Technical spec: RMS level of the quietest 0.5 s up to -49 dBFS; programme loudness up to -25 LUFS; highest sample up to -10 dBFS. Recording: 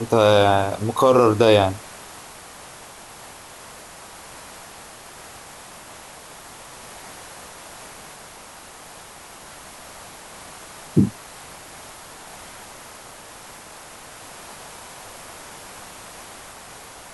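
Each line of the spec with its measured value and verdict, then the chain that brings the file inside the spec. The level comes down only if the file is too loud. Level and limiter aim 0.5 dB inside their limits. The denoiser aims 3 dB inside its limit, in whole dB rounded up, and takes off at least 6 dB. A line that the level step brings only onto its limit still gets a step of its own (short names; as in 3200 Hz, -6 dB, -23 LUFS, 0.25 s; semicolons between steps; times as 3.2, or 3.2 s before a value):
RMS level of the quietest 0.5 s -42 dBFS: fail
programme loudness -18.0 LUFS: fail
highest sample -3.5 dBFS: fail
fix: gain -7.5 dB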